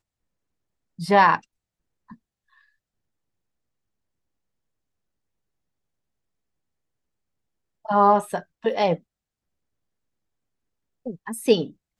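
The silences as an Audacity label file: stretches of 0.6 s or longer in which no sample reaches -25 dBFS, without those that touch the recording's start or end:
1.370000	7.890000	silence
8.950000	11.070000	silence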